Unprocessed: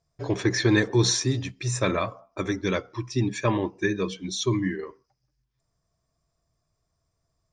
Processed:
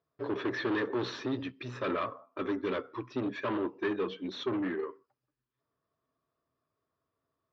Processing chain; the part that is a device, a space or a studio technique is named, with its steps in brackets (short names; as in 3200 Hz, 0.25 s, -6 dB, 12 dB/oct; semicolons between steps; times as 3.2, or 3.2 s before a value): guitar amplifier (tube stage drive 27 dB, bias 0.4; tone controls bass -10 dB, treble -8 dB; speaker cabinet 100–3800 Hz, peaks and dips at 180 Hz -3 dB, 260 Hz +8 dB, 410 Hz +4 dB, 730 Hz -7 dB, 1200 Hz +4 dB, 2200 Hz -5 dB)